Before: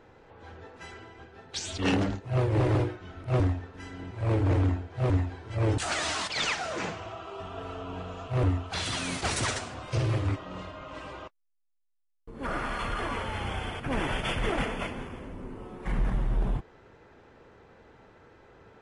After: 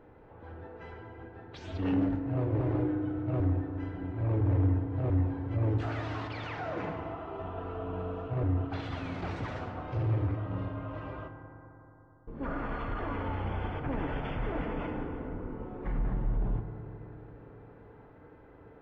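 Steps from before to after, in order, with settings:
brickwall limiter −26 dBFS, peak gain reduction 7.5 dB
head-to-tape spacing loss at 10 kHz 43 dB
feedback delay network reverb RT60 3.6 s, high-frequency decay 0.25×, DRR 5.5 dB
level +1.5 dB

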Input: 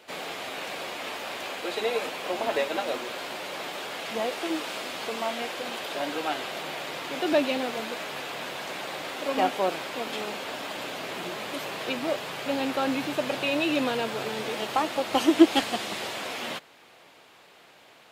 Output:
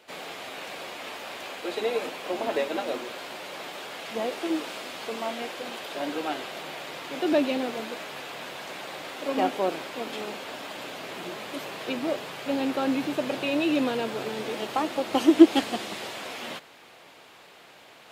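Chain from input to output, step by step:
dynamic equaliser 300 Hz, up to +6 dB, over −38 dBFS, Q 0.86
reversed playback
upward compression, threshold −40 dBFS
reversed playback
level −3 dB

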